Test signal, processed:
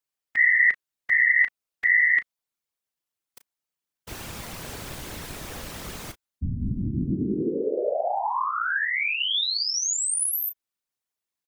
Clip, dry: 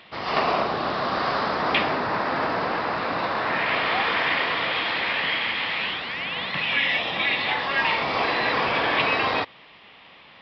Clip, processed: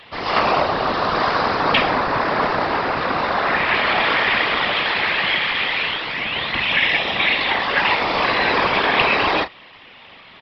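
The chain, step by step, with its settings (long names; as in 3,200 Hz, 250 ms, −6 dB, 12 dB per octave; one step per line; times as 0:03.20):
double-tracking delay 34 ms −11.5 dB
random phases in short frames
level +5 dB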